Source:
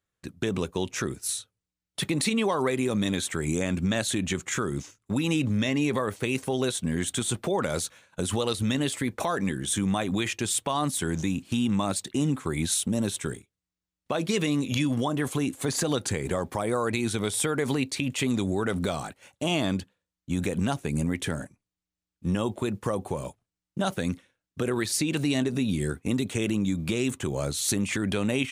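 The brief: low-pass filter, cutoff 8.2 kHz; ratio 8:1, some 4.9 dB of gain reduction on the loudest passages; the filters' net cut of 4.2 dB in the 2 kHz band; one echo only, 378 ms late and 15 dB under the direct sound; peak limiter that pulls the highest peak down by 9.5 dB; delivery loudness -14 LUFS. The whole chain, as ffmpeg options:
-af "lowpass=8200,equalizer=f=2000:t=o:g=-5.5,acompressor=threshold=0.0447:ratio=8,alimiter=level_in=1.26:limit=0.0631:level=0:latency=1,volume=0.794,aecho=1:1:378:0.178,volume=12.6"

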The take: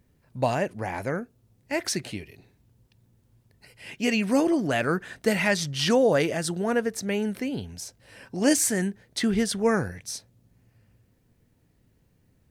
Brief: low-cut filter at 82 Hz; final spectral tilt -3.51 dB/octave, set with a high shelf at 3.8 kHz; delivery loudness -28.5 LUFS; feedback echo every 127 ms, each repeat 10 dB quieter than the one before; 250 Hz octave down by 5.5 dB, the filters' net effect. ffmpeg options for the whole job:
-af "highpass=82,equalizer=f=250:t=o:g=-7,highshelf=f=3800:g=6.5,aecho=1:1:127|254|381|508:0.316|0.101|0.0324|0.0104,volume=0.708"

